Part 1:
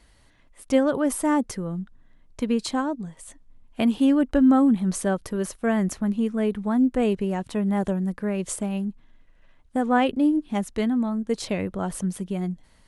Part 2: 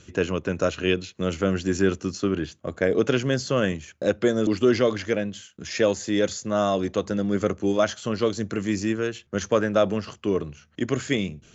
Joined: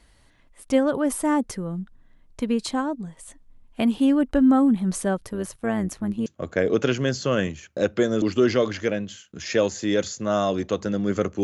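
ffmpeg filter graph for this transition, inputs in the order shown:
ffmpeg -i cue0.wav -i cue1.wav -filter_complex "[0:a]asplit=3[link_01][link_02][link_03];[link_01]afade=type=out:start_time=5.24:duration=0.02[link_04];[link_02]tremolo=f=110:d=0.519,afade=type=in:start_time=5.24:duration=0.02,afade=type=out:start_time=6.26:duration=0.02[link_05];[link_03]afade=type=in:start_time=6.26:duration=0.02[link_06];[link_04][link_05][link_06]amix=inputs=3:normalize=0,apad=whole_dur=11.43,atrim=end=11.43,atrim=end=6.262[link_07];[1:a]atrim=start=2.508:end=7.68[link_08];[link_07][link_08]acrossfade=duration=0.004:curve1=hsin:curve2=hsin" out.wav

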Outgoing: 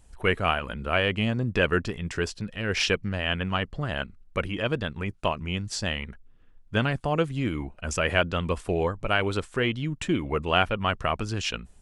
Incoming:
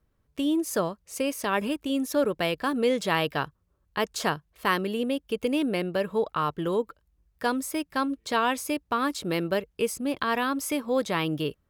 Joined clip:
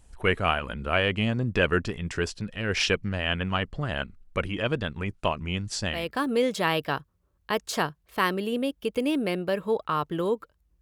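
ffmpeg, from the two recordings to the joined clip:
ffmpeg -i cue0.wav -i cue1.wav -filter_complex "[0:a]apad=whole_dur=10.81,atrim=end=10.81,atrim=end=6.13,asetpts=PTS-STARTPTS[link_01];[1:a]atrim=start=2.32:end=7.28,asetpts=PTS-STARTPTS[link_02];[link_01][link_02]acrossfade=duration=0.28:curve1=tri:curve2=tri" out.wav

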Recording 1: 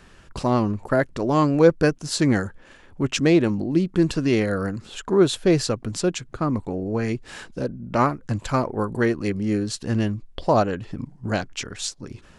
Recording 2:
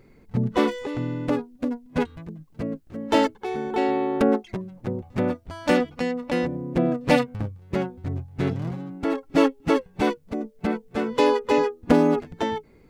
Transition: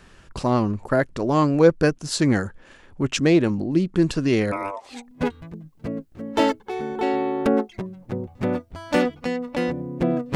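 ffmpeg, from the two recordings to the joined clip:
ffmpeg -i cue0.wav -i cue1.wav -filter_complex "[0:a]asplit=3[link_01][link_02][link_03];[link_01]afade=type=out:start_time=4.51:duration=0.02[link_04];[link_02]aeval=exprs='val(0)*sin(2*PI*790*n/s)':channel_layout=same,afade=type=in:start_time=4.51:duration=0.02,afade=type=out:start_time=5.09:duration=0.02[link_05];[link_03]afade=type=in:start_time=5.09:duration=0.02[link_06];[link_04][link_05][link_06]amix=inputs=3:normalize=0,apad=whole_dur=10.35,atrim=end=10.35,atrim=end=5.09,asetpts=PTS-STARTPTS[link_07];[1:a]atrim=start=1.66:end=7.1,asetpts=PTS-STARTPTS[link_08];[link_07][link_08]acrossfade=duration=0.18:curve1=tri:curve2=tri" out.wav

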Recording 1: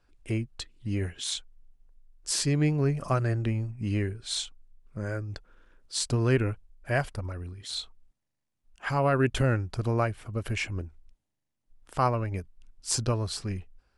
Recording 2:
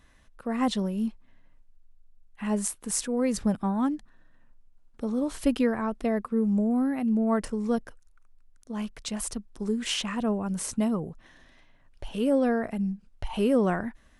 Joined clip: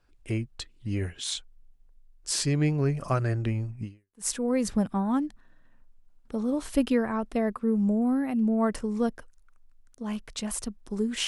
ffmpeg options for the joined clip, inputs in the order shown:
ffmpeg -i cue0.wav -i cue1.wav -filter_complex "[0:a]apad=whole_dur=11.27,atrim=end=11.27,atrim=end=4.27,asetpts=PTS-STARTPTS[link_01];[1:a]atrim=start=2.52:end=9.96,asetpts=PTS-STARTPTS[link_02];[link_01][link_02]acrossfade=duration=0.44:curve1=exp:curve2=exp" out.wav

